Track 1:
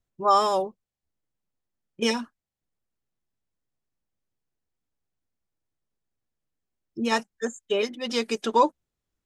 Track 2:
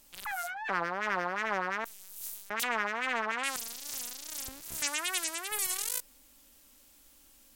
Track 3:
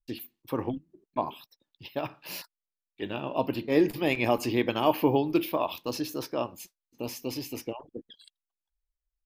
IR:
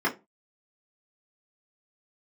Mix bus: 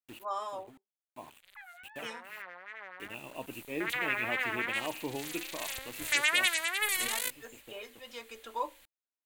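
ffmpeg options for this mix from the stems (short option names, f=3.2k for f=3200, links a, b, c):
-filter_complex "[0:a]highpass=570,volume=-13.5dB,asplit=3[a][b][c];[b]volume=-20dB[d];[1:a]equalizer=f=125:t=o:w=1:g=3,equalizer=f=250:t=o:w=1:g=-11,equalizer=f=500:t=o:w=1:g=8,equalizer=f=2k:t=o:w=1:g=12,equalizer=f=4k:t=o:w=1:g=8,adelay=1300,volume=-2dB,afade=t=in:st=3.11:d=0.68:silence=0.251189,afade=t=in:st=5.07:d=0.52:silence=0.375837[e];[2:a]equalizer=f=2.6k:t=o:w=0.46:g=13.5,acrusher=bits=5:mix=0:aa=0.000001,volume=-14.5dB[f];[c]apad=whole_len=408188[g];[f][g]sidechaincompress=threshold=-44dB:ratio=8:attack=44:release=1200[h];[3:a]atrim=start_sample=2205[i];[d][i]afir=irnorm=-1:irlink=0[j];[a][e][h][j]amix=inputs=4:normalize=0,equalizer=f=5.3k:t=o:w=0.52:g=-10.5"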